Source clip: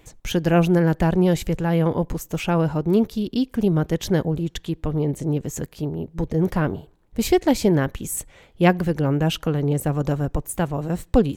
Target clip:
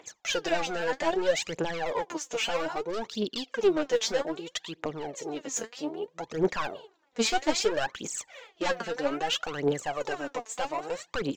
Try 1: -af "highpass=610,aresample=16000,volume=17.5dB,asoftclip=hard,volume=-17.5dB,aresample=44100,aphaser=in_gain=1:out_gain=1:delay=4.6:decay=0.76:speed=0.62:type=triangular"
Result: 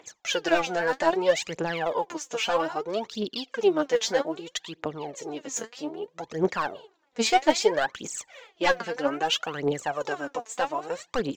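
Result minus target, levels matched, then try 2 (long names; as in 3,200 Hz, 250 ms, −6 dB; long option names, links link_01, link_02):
gain into a clipping stage and back: distortion −8 dB
-af "highpass=610,aresample=16000,volume=27dB,asoftclip=hard,volume=-27dB,aresample=44100,aphaser=in_gain=1:out_gain=1:delay=4.6:decay=0.76:speed=0.62:type=triangular"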